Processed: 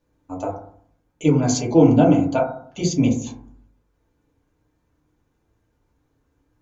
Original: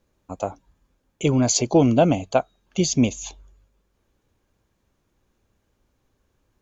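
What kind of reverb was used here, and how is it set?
feedback delay network reverb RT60 0.58 s, low-frequency decay 1.3×, high-frequency decay 0.25×, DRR −4.5 dB
level −6 dB

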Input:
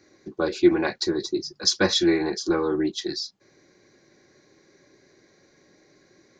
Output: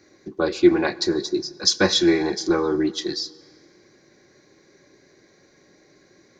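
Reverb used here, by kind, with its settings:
dense smooth reverb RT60 2.1 s, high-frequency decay 0.75×, DRR 18 dB
level +2.5 dB

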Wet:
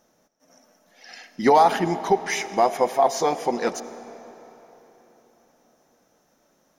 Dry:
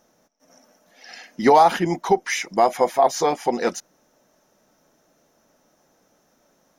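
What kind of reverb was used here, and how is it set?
comb and all-pass reverb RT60 3.9 s, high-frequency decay 0.8×, pre-delay 40 ms, DRR 13 dB
level −2 dB

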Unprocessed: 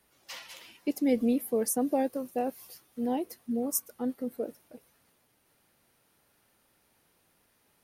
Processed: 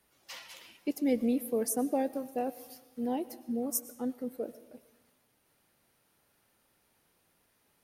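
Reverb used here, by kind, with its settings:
comb and all-pass reverb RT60 1.1 s, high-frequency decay 0.8×, pre-delay 70 ms, DRR 16 dB
level −2.5 dB

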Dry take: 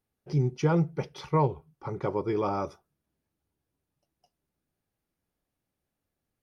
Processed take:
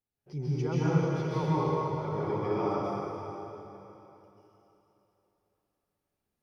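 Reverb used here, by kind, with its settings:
dense smooth reverb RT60 3.3 s, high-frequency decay 0.95×, pre-delay 120 ms, DRR −10 dB
level −11 dB

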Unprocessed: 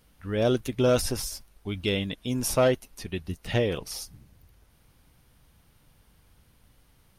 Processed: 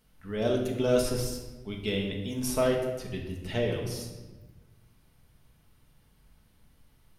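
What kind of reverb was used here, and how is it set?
rectangular room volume 770 cubic metres, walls mixed, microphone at 1.5 metres
level −6.5 dB

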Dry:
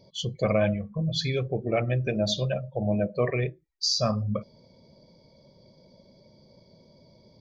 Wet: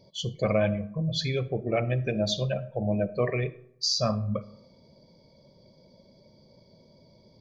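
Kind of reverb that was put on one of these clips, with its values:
comb and all-pass reverb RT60 0.78 s, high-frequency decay 0.5×, pre-delay 15 ms, DRR 17 dB
level −1 dB

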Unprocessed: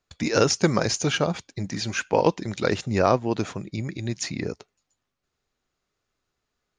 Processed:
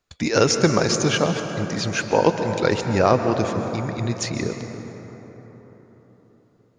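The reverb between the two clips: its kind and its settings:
dense smooth reverb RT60 4.4 s, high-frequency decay 0.4×, pre-delay 115 ms, DRR 6 dB
level +2.5 dB

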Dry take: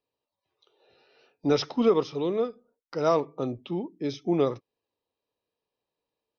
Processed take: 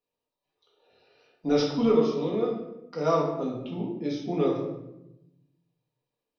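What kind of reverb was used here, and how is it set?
rectangular room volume 310 cubic metres, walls mixed, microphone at 1.8 metres
level −6 dB

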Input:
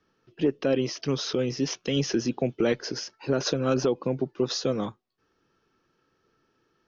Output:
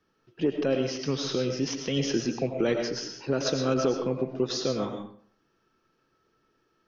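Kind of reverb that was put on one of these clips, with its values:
comb and all-pass reverb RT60 0.54 s, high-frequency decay 0.7×, pre-delay 65 ms, DRR 4 dB
level −2 dB

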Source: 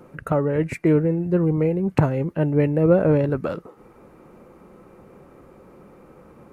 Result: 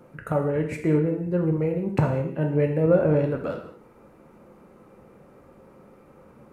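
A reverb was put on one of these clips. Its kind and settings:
reverb whose tail is shaped and stops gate 250 ms falling, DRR 2.5 dB
level −5 dB

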